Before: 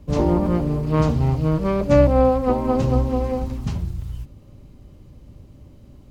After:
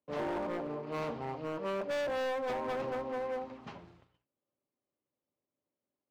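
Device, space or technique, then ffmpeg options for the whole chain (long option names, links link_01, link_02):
walkie-talkie: -af "highpass=470,lowpass=2500,asoftclip=type=hard:threshold=-26dB,agate=range=-26dB:threshold=-52dB:ratio=16:detection=peak,volume=-6dB"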